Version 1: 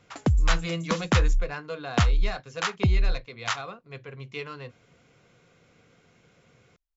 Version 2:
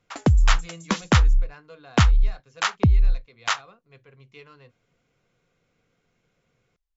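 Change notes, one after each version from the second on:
speech -11.0 dB; background +4.5 dB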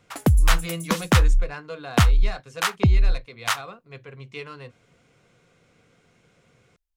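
speech +10.5 dB; master: remove brick-wall FIR low-pass 7600 Hz

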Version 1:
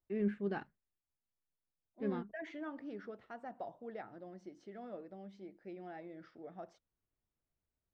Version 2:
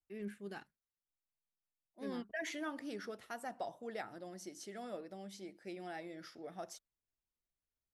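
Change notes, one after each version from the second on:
first voice -11.0 dB; master: remove tape spacing loss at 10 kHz 37 dB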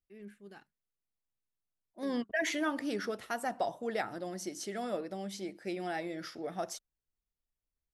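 first voice -5.5 dB; second voice +9.0 dB

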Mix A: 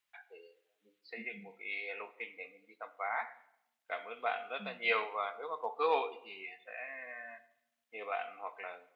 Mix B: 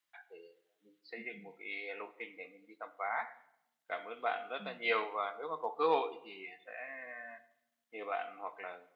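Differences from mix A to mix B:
second voice -5.5 dB; master: add thirty-one-band EQ 160 Hz +12 dB, 315 Hz +9 dB, 2500 Hz -5 dB

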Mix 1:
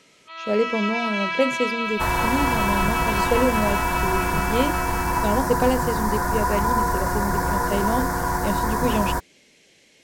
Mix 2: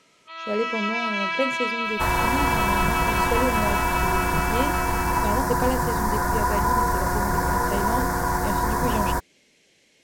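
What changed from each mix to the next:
speech -4.5 dB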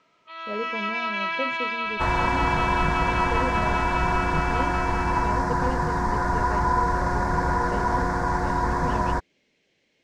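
speech -6.0 dB; master: add air absorption 130 m

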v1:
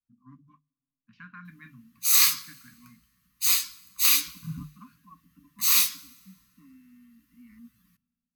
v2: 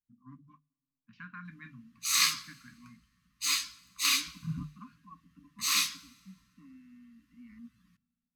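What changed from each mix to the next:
background: add air absorption 66 m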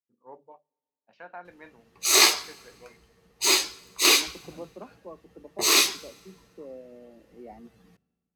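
first voice: add HPF 850 Hz 6 dB/oct; background +8.0 dB; master: remove brick-wall FIR band-stop 290–1000 Hz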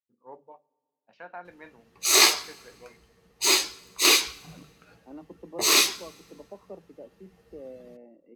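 first voice: send +9.5 dB; second voice: entry +0.95 s

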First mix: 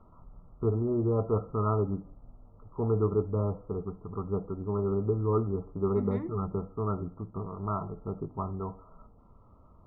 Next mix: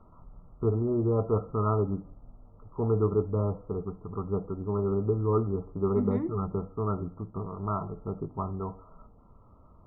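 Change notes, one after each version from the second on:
second voice: add tilt -2.5 dB/oct; reverb: on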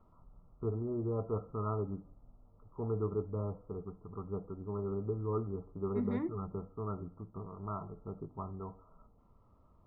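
first voice -9.0 dB; second voice: add tilt +2.5 dB/oct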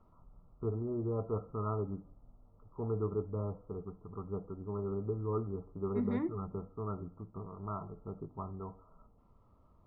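second voice: send +7.0 dB

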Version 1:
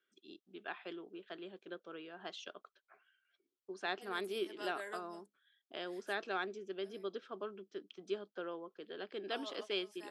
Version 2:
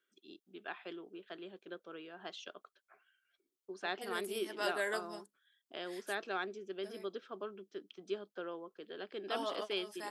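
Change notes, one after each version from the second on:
second voice +10.0 dB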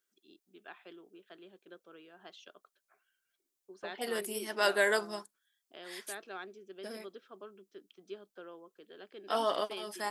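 first voice -6.0 dB; second voice +8.5 dB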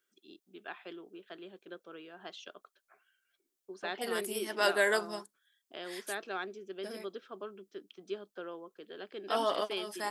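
first voice +6.0 dB

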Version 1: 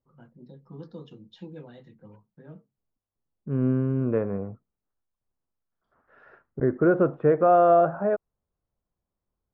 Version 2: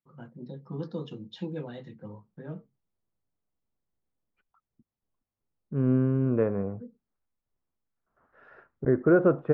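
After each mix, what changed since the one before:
first voice +6.5 dB; second voice: entry +2.25 s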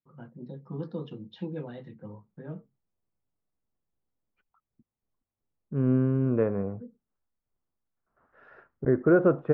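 first voice: add air absorption 200 m

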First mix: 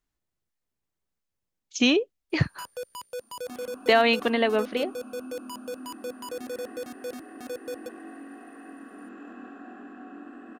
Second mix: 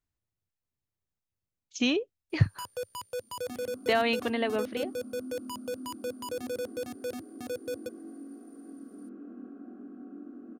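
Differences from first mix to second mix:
speech -6.5 dB; second sound: add running mean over 49 samples; master: add bell 100 Hz +12.5 dB 0.89 oct

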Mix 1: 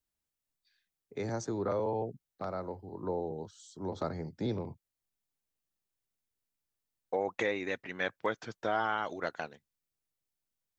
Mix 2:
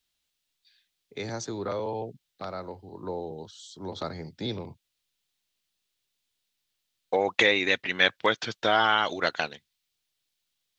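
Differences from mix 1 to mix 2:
second voice +6.5 dB; master: add bell 3500 Hz +13.5 dB 1.5 oct

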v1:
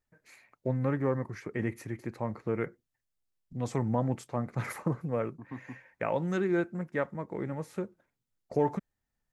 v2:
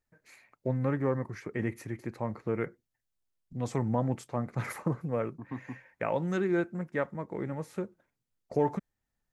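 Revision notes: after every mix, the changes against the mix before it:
second voice +3.0 dB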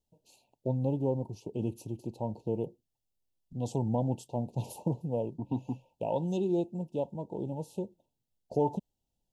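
second voice +7.0 dB; master: add Chebyshev band-stop 940–2700 Hz, order 5

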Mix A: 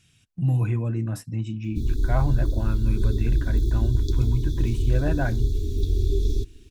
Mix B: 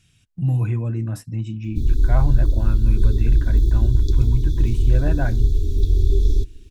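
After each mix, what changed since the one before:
master: add low shelf 68 Hz +9 dB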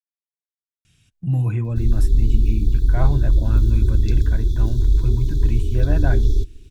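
speech: entry +0.85 s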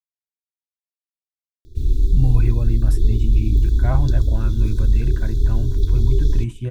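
speech: entry +0.90 s

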